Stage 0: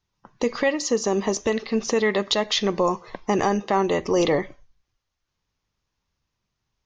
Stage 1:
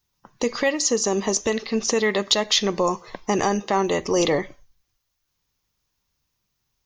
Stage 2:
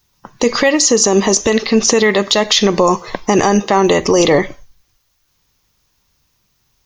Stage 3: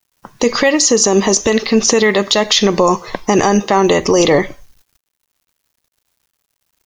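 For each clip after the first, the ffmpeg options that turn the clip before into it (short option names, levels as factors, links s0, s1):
-af "aemphasis=mode=production:type=50fm"
-af "alimiter=level_in=5.01:limit=0.891:release=50:level=0:latency=1,volume=0.891"
-af "acrusher=bits=8:mix=0:aa=0.000001"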